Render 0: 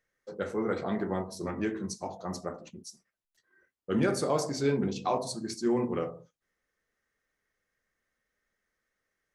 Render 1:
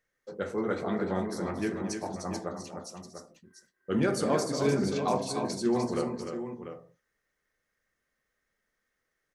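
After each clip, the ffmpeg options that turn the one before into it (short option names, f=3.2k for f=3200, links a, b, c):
-af "aecho=1:1:231|300|693:0.178|0.473|0.316"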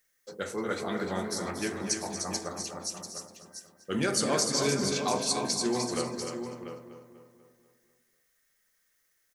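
-filter_complex "[0:a]crystalizer=i=6.5:c=0,asplit=2[a][b];[b]adelay=245,lowpass=f=3.2k:p=1,volume=-9.5dB,asplit=2[c][d];[d]adelay=245,lowpass=f=3.2k:p=1,volume=0.54,asplit=2[e][f];[f]adelay=245,lowpass=f=3.2k:p=1,volume=0.54,asplit=2[g][h];[h]adelay=245,lowpass=f=3.2k:p=1,volume=0.54,asplit=2[i][j];[j]adelay=245,lowpass=f=3.2k:p=1,volume=0.54,asplit=2[k][l];[l]adelay=245,lowpass=f=3.2k:p=1,volume=0.54[m];[a][c][e][g][i][k][m]amix=inputs=7:normalize=0,acrossover=split=8400[n][o];[o]acompressor=threshold=-43dB:ratio=4:attack=1:release=60[p];[n][p]amix=inputs=2:normalize=0,volume=-3.5dB"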